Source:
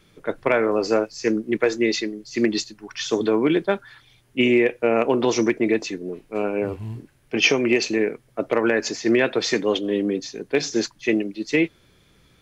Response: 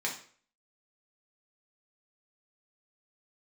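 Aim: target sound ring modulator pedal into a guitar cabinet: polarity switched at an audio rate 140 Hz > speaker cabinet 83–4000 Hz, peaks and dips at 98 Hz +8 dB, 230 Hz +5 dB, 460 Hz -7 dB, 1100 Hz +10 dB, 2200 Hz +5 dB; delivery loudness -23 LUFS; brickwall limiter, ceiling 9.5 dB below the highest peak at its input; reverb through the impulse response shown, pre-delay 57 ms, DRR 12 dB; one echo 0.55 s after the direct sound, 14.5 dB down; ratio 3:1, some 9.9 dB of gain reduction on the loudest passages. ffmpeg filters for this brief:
-filter_complex "[0:a]acompressor=threshold=-28dB:ratio=3,alimiter=limit=-23.5dB:level=0:latency=1,aecho=1:1:550:0.188,asplit=2[a][b];[1:a]atrim=start_sample=2205,adelay=57[c];[b][c]afir=irnorm=-1:irlink=0,volume=-17.5dB[d];[a][d]amix=inputs=2:normalize=0,aeval=exprs='val(0)*sgn(sin(2*PI*140*n/s))':c=same,highpass=83,equalizer=f=98:t=q:w=4:g=8,equalizer=f=230:t=q:w=4:g=5,equalizer=f=460:t=q:w=4:g=-7,equalizer=f=1.1k:t=q:w=4:g=10,equalizer=f=2.2k:t=q:w=4:g=5,lowpass=f=4k:w=0.5412,lowpass=f=4k:w=1.3066,volume=9.5dB"

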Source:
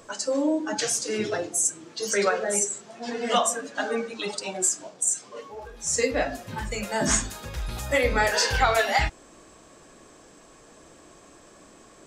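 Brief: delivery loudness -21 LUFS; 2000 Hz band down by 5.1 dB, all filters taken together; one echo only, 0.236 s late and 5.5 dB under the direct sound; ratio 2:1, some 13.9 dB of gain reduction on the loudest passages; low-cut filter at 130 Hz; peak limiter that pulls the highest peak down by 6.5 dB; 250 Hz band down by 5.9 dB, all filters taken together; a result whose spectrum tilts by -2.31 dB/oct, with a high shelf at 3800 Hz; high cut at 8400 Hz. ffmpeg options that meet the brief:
-af "highpass=130,lowpass=8.4k,equalizer=f=250:t=o:g=-7,equalizer=f=2k:t=o:g=-5.5,highshelf=f=3.8k:g=-3.5,acompressor=threshold=-46dB:ratio=2,alimiter=level_in=6.5dB:limit=-24dB:level=0:latency=1,volume=-6.5dB,aecho=1:1:236:0.531,volume=19.5dB"

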